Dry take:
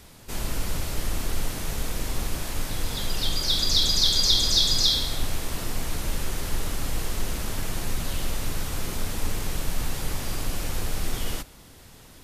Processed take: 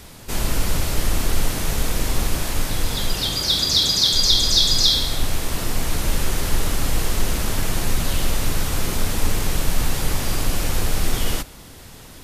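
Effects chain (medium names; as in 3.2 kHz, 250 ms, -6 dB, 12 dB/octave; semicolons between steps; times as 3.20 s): 3.13–4.12 s: high-pass 42 Hz -> 95 Hz; in parallel at -1.5 dB: gain riding within 4 dB 2 s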